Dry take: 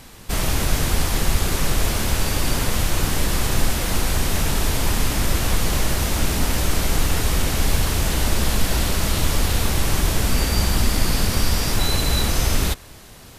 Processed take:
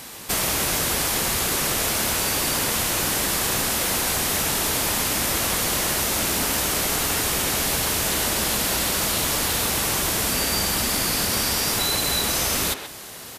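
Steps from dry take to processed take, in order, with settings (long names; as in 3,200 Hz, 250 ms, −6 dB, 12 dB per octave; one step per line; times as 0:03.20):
high-pass filter 310 Hz 6 dB per octave
high-shelf EQ 7,000 Hz +6.5 dB
downward compressor 2.5 to 1, threshold −27 dBFS, peak gain reduction 6 dB
far-end echo of a speakerphone 130 ms, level −7 dB
level +5 dB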